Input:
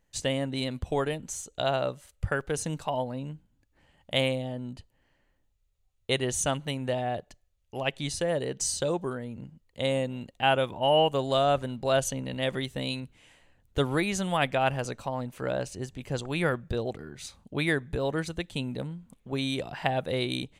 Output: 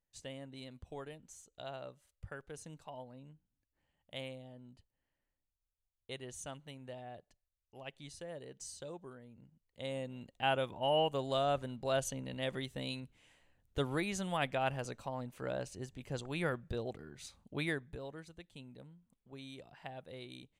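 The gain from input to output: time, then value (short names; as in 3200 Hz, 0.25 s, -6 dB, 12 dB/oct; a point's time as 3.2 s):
9.39 s -18 dB
10.38 s -8.5 dB
17.64 s -8.5 dB
18.19 s -19.5 dB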